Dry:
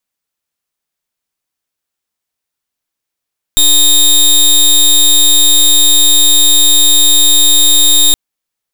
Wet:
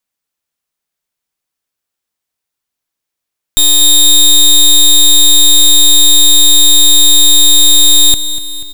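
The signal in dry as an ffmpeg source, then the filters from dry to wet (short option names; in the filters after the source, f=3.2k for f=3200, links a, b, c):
-f lavfi -i "aevalsrc='0.473*(2*lt(mod(3700*t,1),0.2)-1)':d=4.57:s=44100"
-filter_complex "[0:a]asplit=2[a][b];[b]aecho=0:1:243|486|729|972|1215|1458:0.224|0.128|0.0727|0.0415|0.0236|0.0135[c];[a][c]amix=inputs=2:normalize=0"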